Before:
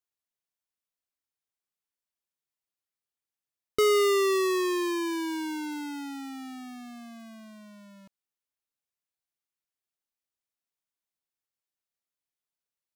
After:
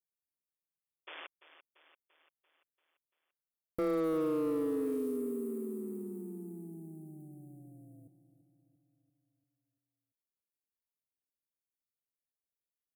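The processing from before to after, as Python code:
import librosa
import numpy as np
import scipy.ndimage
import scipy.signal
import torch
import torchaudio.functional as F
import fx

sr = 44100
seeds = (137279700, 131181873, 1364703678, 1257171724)

p1 = scipy.signal.sosfilt(scipy.signal.cheby2(4, 40, [960.0, 5900.0], 'bandstop', fs=sr, output='sos'), x)
p2 = fx.spec_paint(p1, sr, seeds[0], shape='noise', start_s=1.07, length_s=0.2, low_hz=360.0, high_hz=3500.0, level_db=-43.0)
p3 = p2 * np.sin(2.0 * np.pi * 80.0 * np.arange(len(p2)) / sr)
p4 = np.clip(p3, -10.0 ** (-27.5 / 20.0), 10.0 ** (-27.5 / 20.0))
p5 = p4 + fx.echo_feedback(p4, sr, ms=341, feedback_pct=57, wet_db=-14, dry=0)
y = p5 * 10.0 ** (-1.0 / 20.0)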